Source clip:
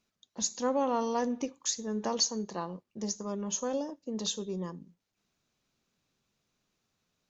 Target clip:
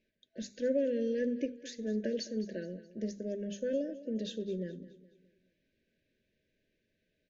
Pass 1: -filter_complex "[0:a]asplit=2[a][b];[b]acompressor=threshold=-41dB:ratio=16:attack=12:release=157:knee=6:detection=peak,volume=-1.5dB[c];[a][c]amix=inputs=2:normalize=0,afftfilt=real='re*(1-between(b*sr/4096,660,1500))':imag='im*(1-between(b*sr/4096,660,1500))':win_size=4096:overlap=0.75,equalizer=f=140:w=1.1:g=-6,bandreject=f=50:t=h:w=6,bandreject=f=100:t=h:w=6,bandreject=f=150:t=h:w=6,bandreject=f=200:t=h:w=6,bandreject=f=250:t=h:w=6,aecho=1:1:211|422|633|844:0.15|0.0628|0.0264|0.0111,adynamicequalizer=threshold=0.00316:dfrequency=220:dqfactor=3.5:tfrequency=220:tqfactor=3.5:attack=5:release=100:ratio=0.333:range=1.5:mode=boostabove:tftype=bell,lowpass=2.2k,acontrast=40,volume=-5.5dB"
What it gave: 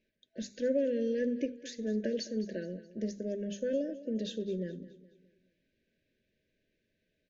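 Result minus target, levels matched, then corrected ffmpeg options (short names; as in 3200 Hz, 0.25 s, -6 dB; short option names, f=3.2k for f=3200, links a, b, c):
compressor: peak gain reduction -9 dB
-filter_complex "[0:a]asplit=2[a][b];[b]acompressor=threshold=-50.5dB:ratio=16:attack=12:release=157:knee=6:detection=peak,volume=-1.5dB[c];[a][c]amix=inputs=2:normalize=0,afftfilt=real='re*(1-between(b*sr/4096,660,1500))':imag='im*(1-between(b*sr/4096,660,1500))':win_size=4096:overlap=0.75,equalizer=f=140:w=1.1:g=-6,bandreject=f=50:t=h:w=6,bandreject=f=100:t=h:w=6,bandreject=f=150:t=h:w=6,bandreject=f=200:t=h:w=6,bandreject=f=250:t=h:w=6,aecho=1:1:211|422|633|844:0.15|0.0628|0.0264|0.0111,adynamicequalizer=threshold=0.00316:dfrequency=220:dqfactor=3.5:tfrequency=220:tqfactor=3.5:attack=5:release=100:ratio=0.333:range=1.5:mode=boostabove:tftype=bell,lowpass=2.2k,acontrast=40,volume=-5.5dB"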